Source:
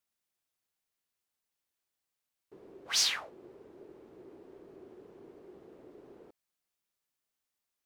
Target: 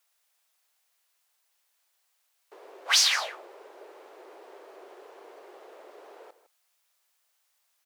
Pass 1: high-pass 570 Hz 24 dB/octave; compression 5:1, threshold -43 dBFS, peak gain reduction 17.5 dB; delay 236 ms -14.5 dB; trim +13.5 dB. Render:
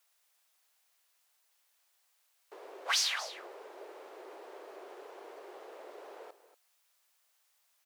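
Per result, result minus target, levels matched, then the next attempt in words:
echo 79 ms late; compression: peak gain reduction +9 dB
high-pass 570 Hz 24 dB/octave; compression 5:1, threshold -43 dBFS, peak gain reduction 17.5 dB; delay 157 ms -14.5 dB; trim +13.5 dB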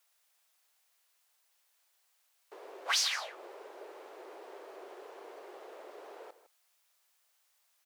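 compression: peak gain reduction +9 dB
high-pass 570 Hz 24 dB/octave; compression 5:1, threshold -32 dBFS, peak gain reduction 8.5 dB; delay 157 ms -14.5 dB; trim +13.5 dB

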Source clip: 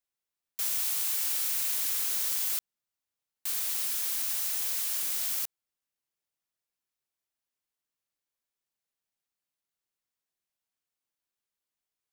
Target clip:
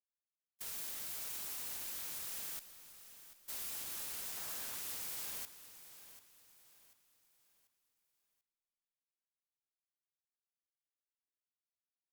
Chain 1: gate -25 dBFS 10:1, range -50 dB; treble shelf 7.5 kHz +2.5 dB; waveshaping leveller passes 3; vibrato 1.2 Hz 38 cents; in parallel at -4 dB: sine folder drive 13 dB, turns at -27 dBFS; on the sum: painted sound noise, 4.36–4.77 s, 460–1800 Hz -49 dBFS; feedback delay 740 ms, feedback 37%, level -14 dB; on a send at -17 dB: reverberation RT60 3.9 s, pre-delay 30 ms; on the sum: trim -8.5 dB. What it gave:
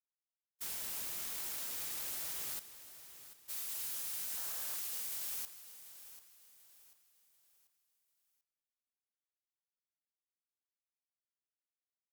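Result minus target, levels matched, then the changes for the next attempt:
sine folder: distortion -13 dB
change: sine folder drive 19 dB, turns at -27 dBFS

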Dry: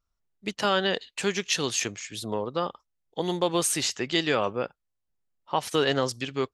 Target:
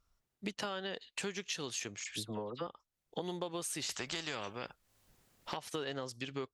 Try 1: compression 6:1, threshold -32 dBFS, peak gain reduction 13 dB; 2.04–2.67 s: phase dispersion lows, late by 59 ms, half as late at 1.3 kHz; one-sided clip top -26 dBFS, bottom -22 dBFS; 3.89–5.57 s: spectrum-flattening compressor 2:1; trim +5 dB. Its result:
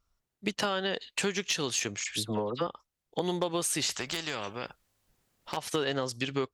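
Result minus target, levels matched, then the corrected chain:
compression: peak gain reduction -9 dB
compression 6:1, threshold -43 dBFS, peak gain reduction 22 dB; 2.04–2.67 s: phase dispersion lows, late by 59 ms, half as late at 1.3 kHz; one-sided clip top -26 dBFS, bottom -22 dBFS; 3.89–5.57 s: spectrum-flattening compressor 2:1; trim +5 dB

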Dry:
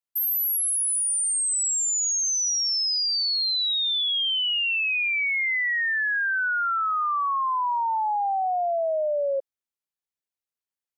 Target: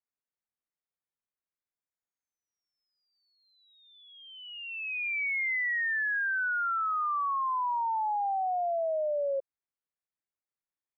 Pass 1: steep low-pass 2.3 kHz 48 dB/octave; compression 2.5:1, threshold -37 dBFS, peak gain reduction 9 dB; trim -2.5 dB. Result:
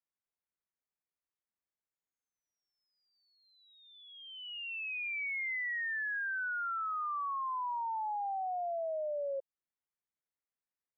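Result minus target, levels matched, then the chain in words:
compression: peak gain reduction +6.5 dB
steep low-pass 2.3 kHz 48 dB/octave; compression 2.5:1, threshold -26.5 dBFS, peak gain reduction 2.5 dB; trim -2.5 dB

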